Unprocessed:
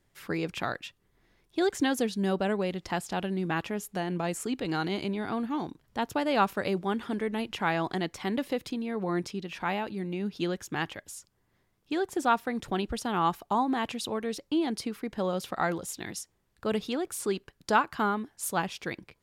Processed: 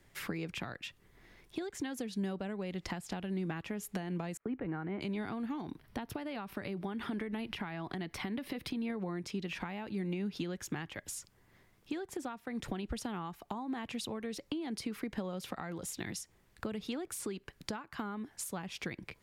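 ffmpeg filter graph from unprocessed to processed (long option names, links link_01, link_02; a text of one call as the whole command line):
ffmpeg -i in.wav -filter_complex "[0:a]asettb=1/sr,asplit=3[link_01][link_02][link_03];[link_01]atrim=end=4.374[link_04];[link_02]atrim=start=4.37:end=5.01,asetpts=PTS-STARTPTS,afade=type=in:duration=0.004:curve=qsin,afade=type=out:start_time=0.636:duration=0.004:curve=qsin,lowpass=frequency=1900:width=0.5412,lowpass=frequency=1900:width=1.3066,agate=range=-33dB:threshold=-42dB:ratio=3:release=100:detection=peak[link_05];[link_03]atrim=start=5.006[link_06];[link_04][link_05]acrossfade=duration=0.004:curve1=hsin:curve2=qsin[link_07];[link_07][link_06]acrossfade=duration=0.004:curve1=qsin:curve2=hsin,asettb=1/sr,asplit=3[link_08][link_09][link_10];[link_08]atrim=end=5.614[link_11];[link_09]atrim=start=5.61:end=8.9,asetpts=PTS-STARTPTS,afade=type=in:duration=0.004:curve=qsin,afade=type=out:start_time=3.286:duration=0.004:curve=qsin,bandreject=frequency=510:width=8.1,acompressor=threshold=-34dB:ratio=2:attack=3.2:release=140:knee=1:detection=peak,equalizer=frequency=7100:width=2.8:gain=-10[link_12];[link_10]atrim=start=8.896[link_13];[link_11][link_12]acrossfade=duration=0.004:curve1=hsin:curve2=qsin[link_14];[link_14][link_13]acrossfade=duration=0.004:curve1=qsin:curve2=hsin,acompressor=threshold=-38dB:ratio=6,equalizer=frequency=2100:width_type=o:width=0.67:gain=4,acrossover=split=240[link_15][link_16];[link_16]acompressor=threshold=-45dB:ratio=6[link_17];[link_15][link_17]amix=inputs=2:normalize=0,volume=6dB" out.wav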